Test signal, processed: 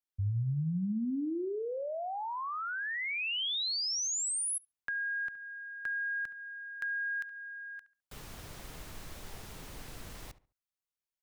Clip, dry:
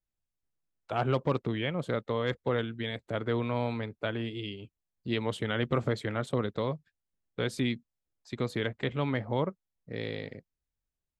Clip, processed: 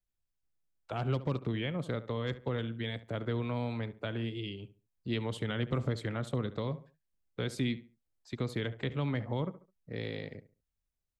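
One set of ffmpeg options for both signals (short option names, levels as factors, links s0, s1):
-filter_complex "[0:a]lowshelf=f=97:g=5.5,asplit=2[s0][s1];[s1]adelay=70,lowpass=f=2300:p=1,volume=0.168,asplit=2[s2][s3];[s3]adelay=70,lowpass=f=2300:p=1,volume=0.29,asplit=2[s4][s5];[s5]adelay=70,lowpass=f=2300:p=1,volume=0.29[s6];[s0][s2][s4][s6]amix=inputs=4:normalize=0,acrossover=split=280|3000[s7][s8][s9];[s8]acompressor=threshold=0.02:ratio=3[s10];[s7][s10][s9]amix=inputs=3:normalize=0,volume=0.75"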